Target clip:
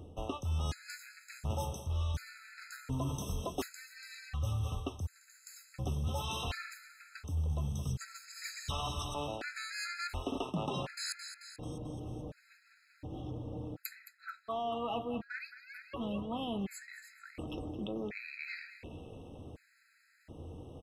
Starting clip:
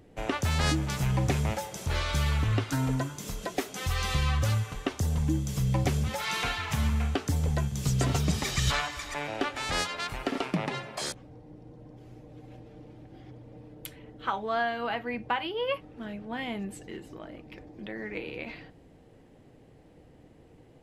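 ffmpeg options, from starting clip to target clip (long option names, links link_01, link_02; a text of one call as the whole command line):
ffmpeg -i in.wav -filter_complex "[0:a]equalizer=frequency=2200:width=6.4:gain=-4.5,aecho=1:1:219|438|657|876|1095:0.188|0.102|0.0549|0.0297|0.016,asplit=2[link_01][link_02];[link_02]asoftclip=type=tanh:threshold=-24.5dB,volume=-5.5dB[link_03];[link_01][link_03]amix=inputs=2:normalize=0,equalizer=frequency=83:width=7.2:gain=14.5,areverse,acompressor=threshold=-35dB:ratio=6,areverse,afftfilt=real='re*gt(sin(2*PI*0.69*pts/sr)*(1-2*mod(floor(b*sr/1024/1300),2)),0)':imag='im*gt(sin(2*PI*0.69*pts/sr)*(1-2*mod(floor(b*sr/1024/1300),2)),0)':win_size=1024:overlap=0.75,volume=2dB" out.wav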